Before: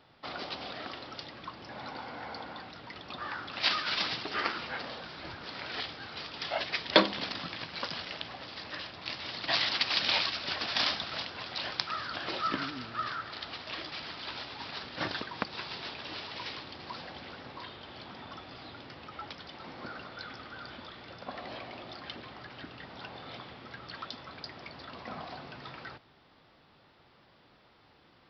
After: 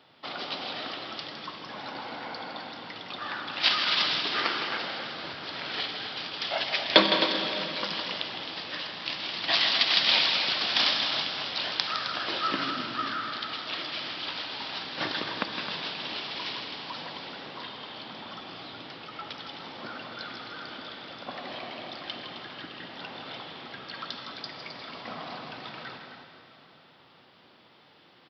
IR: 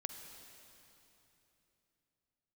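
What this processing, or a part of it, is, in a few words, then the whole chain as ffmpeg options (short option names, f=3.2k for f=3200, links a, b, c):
stadium PA: -filter_complex "[0:a]highpass=150,equalizer=f=3.2k:t=o:w=0.67:g=5,aecho=1:1:160.3|262.4:0.355|0.316[a];[1:a]atrim=start_sample=2205[b];[a][b]afir=irnorm=-1:irlink=0,volume=4.5dB"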